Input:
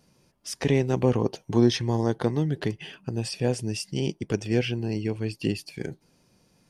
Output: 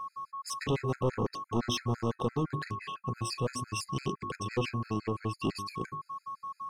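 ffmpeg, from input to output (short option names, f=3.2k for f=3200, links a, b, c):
-af "aeval=exprs='val(0)+0.0178*sin(2*PI*1100*n/s)':c=same,bandreject=f=50:t=h:w=6,bandreject=f=100:t=h:w=6,bandreject=f=150:t=h:w=6,bandreject=f=200:t=h:w=6,bandreject=f=250:t=h:w=6,bandreject=f=300:t=h:w=6,bandreject=f=350:t=h:w=6,bandreject=f=400:t=h:w=6,asoftclip=type=tanh:threshold=-22.5dB,afftfilt=real='re*gt(sin(2*PI*5.9*pts/sr)*(1-2*mod(floor(b*sr/1024/1300),2)),0)':imag='im*gt(sin(2*PI*5.9*pts/sr)*(1-2*mod(floor(b*sr/1024/1300),2)),0)':win_size=1024:overlap=0.75"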